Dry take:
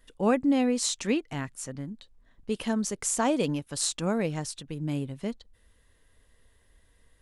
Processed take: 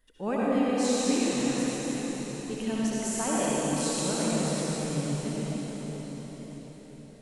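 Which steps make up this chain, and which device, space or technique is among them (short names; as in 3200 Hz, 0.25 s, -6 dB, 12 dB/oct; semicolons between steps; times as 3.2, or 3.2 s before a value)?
cathedral (reverb RT60 5.6 s, pre-delay 59 ms, DRR -8 dB); gain -8 dB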